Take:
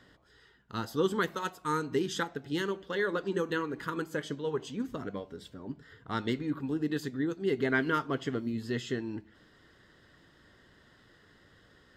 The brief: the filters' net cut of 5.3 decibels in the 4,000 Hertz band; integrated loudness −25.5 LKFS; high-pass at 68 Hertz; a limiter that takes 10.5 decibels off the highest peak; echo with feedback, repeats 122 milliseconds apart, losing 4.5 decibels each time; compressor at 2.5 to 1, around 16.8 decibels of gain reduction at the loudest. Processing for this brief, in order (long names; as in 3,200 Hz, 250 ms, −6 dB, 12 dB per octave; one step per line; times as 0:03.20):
high-pass filter 68 Hz
parametric band 4,000 Hz −7 dB
downward compressor 2.5 to 1, threshold −51 dBFS
brickwall limiter −42 dBFS
repeating echo 122 ms, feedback 60%, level −4.5 dB
level +25.5 dB